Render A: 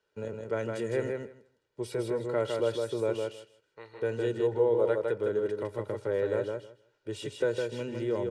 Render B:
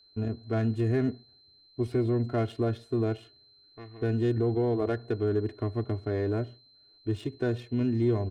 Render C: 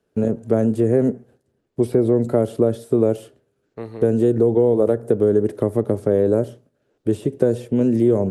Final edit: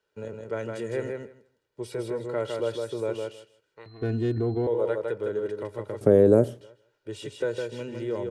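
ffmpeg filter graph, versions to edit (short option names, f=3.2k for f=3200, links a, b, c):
-filter_complex "[0:a]asplit=3[a][b][c];[a]atrim=end=3.862[d];[1:a]atrim=start=3.858:end=4.672[e];[b]atrim=start=4.668:end=6.012[f];[2:a]atrim=start=6.008:end=6.612[g];[c]atrim=start=6.608[h];[d][e]acrossfade=d=0.004:c1=hsin:c2=hsin[i];[i][f]acrossfade=d=0.004:c1=hsin:c2=hsin[j];[j][g]acrossfade=d=0.004:c1=hsin:c2=hsin[k];[k][h]acrossfade=d=0.004:c1=hsin:c2=hsin"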